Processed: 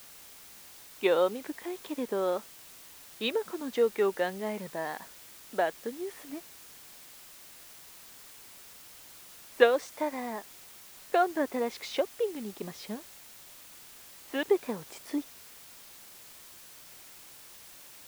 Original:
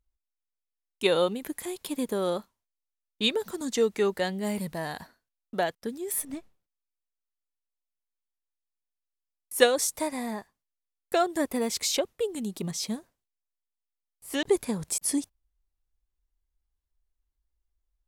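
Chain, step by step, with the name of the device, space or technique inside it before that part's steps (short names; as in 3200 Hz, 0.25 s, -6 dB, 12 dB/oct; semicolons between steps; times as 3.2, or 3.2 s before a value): wax cylinder (BPF 310–2300 Hz; wow and flutter; white noise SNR 17 dB)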